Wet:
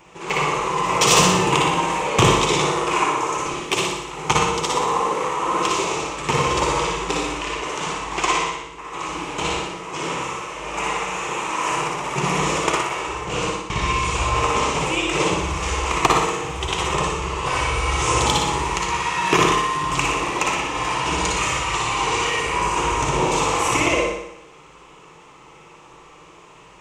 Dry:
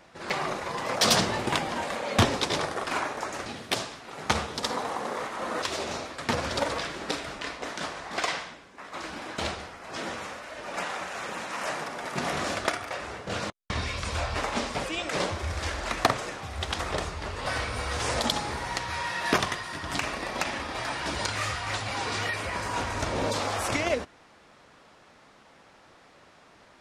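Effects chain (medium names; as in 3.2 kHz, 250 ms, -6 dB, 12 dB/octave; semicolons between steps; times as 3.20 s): rippled EQ curve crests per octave 0.71, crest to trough 12 dB; flutter echo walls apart 10.3 m, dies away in 0.75 s; reverberation RT60 0.45 s, pre-delay 50 ms, DRR 1 dB; trim +3.5 dB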